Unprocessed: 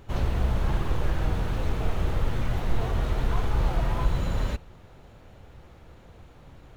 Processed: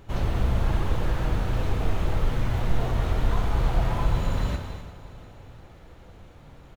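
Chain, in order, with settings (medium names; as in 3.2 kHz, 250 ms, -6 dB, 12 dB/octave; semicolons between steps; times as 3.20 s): on a send: feedback delay 348 ms, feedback 55%, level -16 dB; on the sum: gated-style reverb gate 310 ms flat, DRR 4.5 dB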